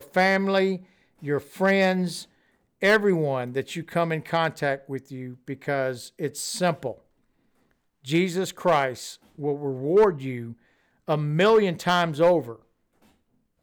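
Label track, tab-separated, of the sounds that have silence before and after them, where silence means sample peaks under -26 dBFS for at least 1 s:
8.090000	12.500000	sound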